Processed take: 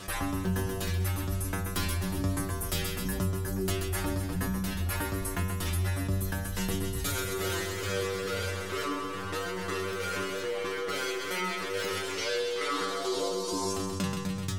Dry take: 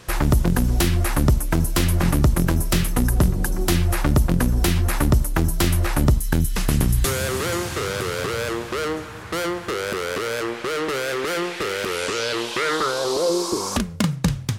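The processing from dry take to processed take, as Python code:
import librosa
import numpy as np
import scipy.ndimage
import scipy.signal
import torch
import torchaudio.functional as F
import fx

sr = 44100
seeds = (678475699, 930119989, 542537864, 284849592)

y = fx.wow_flutter(x, sr, seeds[0], rate_hz=2.1, depth_cents=96.0)
y = fx.chopper(y, sr, hz=2.3, depth_pct=60, duty_pct=55)
y = fx.stiff_resonator(y, sr, f0_hz=94.0, decay_s=0.59, stiffness=0.002)
y = fx.echo_feedback(y, sr, ms=131, feedback_pct=60, wet_db=-8.5)
y = fx.env_flatten(y, sr, amount_pct=50)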